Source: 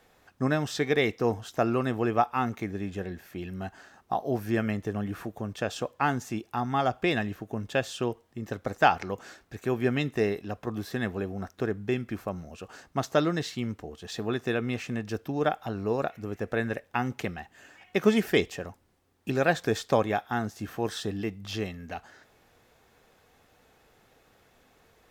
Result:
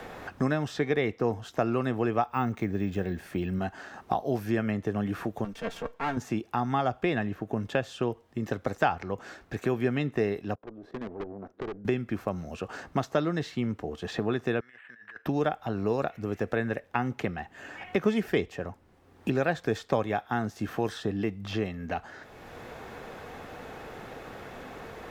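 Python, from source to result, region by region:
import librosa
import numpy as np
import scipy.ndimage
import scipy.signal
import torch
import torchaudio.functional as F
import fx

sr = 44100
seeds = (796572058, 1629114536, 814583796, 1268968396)

y = fx.chain(x, sr, fx.low_shelf(hz=190.0, db=6.0),
    fx.resample_bad(factor=2, down='none', up='hold'), at=(2.28, 3.59))
y = fx.chain(y, sr, fx.lower_of_two(delay_ms=4.4),
    fx.comb_fb(f0_hz=460.0, decay_s=0.2, harmonics='all', damping=0.0, mix_pct=50),
    fx.transient(attack_db=-10, sustain_db=0), at=(5.44, 6.17))
y = fx.chain(y, sr, fx.level_steps(step_db=15),
    fx.bandpass_q(hz=370.0, q=1.3),
    fx.tube_stage(drive_db=43.0, bias=0.7), at=(10.55, 11.85))
y = fx.chain(y, sr, fx.resample_bad(factor=8, down='none', up='hold'),
    fx.bandpass_q(hz=1700.0, q=10.0),
    fx.over_compress(threshold_db=-56.0, ratio=-1.0), at=(14.6, 15.26))
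y = fx.high_shelf(y, sr, hz=4300.0, db=-9.5)
y = fx.band_squash(y, sr, depth_pct=70)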